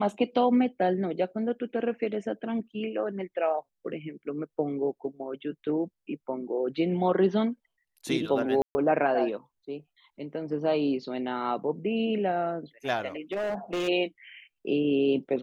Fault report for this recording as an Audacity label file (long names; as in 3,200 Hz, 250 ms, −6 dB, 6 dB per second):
8.620000	8.750000	drop-out 130 ms
13.320000	13.890000	clipping −26.5 dBFS